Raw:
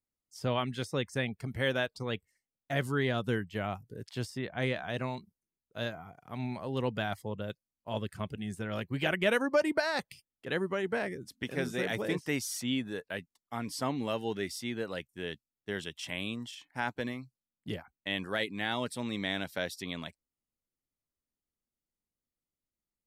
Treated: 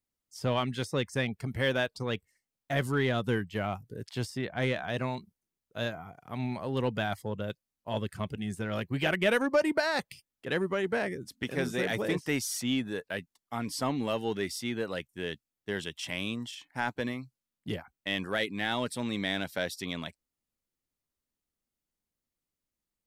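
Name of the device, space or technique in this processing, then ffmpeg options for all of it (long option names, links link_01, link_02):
parallel distortion: -filter_complex "[0:a]asplit=2[link_01][link_02];[link_02]asoftclip=type=hard:threshold=-29.5dB,volume=-8dB[link_03];[link_01][link_03]amix=inputs=2:normalize=0"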